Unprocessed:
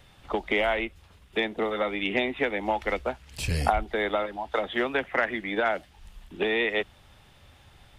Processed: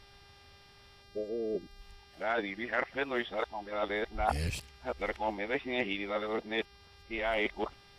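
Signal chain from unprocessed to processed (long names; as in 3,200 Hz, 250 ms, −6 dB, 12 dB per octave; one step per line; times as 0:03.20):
played backwards from end to start
time-frequency box erased 0:01.03–0:01.80, 690–4,200 Hz
hum with harmonics 400 Hz, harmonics 14, −54 dBFS −1 dB per octave
level −6.5 dB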